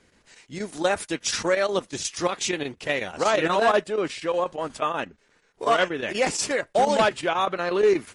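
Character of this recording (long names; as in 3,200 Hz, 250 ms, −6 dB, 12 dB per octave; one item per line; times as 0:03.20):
chopped level 8.3 Hz, depth 60%, duty 85%
MP3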